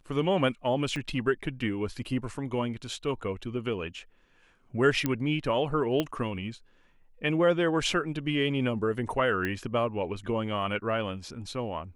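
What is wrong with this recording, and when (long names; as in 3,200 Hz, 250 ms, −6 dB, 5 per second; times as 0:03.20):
0:00.96: click −22 dBFS
0:05.06: click −13 dBFS
0:06.00: click −14 dBFS
0:09.45: click −18 dBFS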